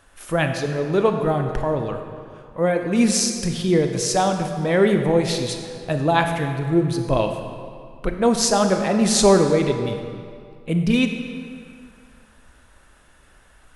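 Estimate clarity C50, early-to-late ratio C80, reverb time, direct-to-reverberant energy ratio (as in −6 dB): 6.0 dB, 7.0 dB, 2.3 s, 5.0 dB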